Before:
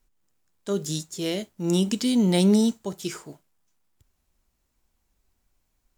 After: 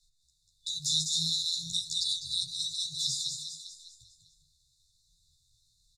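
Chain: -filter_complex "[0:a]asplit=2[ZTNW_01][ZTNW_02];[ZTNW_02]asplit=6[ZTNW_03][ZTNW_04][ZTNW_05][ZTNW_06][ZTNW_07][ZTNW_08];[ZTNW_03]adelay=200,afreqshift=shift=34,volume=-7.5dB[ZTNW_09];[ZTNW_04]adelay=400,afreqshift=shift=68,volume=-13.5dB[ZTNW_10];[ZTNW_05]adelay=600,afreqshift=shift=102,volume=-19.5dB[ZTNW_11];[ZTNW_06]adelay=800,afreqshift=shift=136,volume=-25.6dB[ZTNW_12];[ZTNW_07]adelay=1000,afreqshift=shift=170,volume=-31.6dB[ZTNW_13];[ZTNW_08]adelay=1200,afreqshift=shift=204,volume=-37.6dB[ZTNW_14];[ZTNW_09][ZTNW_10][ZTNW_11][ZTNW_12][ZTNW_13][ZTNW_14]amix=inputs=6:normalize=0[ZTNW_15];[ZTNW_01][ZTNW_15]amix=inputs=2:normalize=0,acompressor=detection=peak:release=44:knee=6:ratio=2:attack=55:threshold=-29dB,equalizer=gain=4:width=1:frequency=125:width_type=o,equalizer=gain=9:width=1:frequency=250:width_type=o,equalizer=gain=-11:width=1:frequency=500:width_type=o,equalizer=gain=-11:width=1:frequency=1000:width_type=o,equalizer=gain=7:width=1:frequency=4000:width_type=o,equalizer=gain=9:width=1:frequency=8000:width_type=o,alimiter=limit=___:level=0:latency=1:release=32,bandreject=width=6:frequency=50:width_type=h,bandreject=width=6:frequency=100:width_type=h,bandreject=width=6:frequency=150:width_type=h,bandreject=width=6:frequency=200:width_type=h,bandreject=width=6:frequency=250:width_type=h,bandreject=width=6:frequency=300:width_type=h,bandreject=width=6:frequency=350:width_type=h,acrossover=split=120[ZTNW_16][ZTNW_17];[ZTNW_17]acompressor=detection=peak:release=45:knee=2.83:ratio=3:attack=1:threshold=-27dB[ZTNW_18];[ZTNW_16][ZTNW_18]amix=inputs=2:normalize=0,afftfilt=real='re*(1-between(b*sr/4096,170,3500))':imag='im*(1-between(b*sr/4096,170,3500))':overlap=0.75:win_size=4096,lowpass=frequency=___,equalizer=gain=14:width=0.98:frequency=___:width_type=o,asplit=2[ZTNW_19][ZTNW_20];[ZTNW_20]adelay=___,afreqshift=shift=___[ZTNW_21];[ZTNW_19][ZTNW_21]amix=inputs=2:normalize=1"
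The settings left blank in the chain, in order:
-14dB, 11000, 3500, 11.3, -1.3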